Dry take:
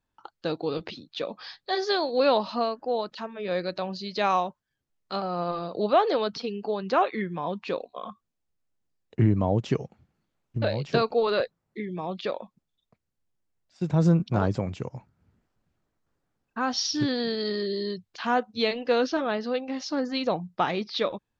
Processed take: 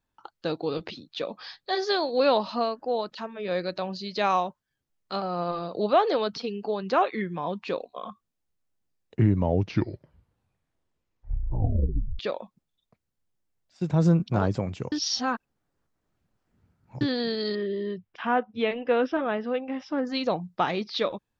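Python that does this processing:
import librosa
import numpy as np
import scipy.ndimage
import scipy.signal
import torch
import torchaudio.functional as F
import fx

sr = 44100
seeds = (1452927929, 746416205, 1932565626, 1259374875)

y = fx.savgol(x, sr, points=25, at=(17.55, 20.07))
y = fx.edit(y, sr, fx.tape_stop(start_s=9.2, length_s=2.99),
    fx.reverse_span(start_s=14.92, length_s=2.09), tone=tone)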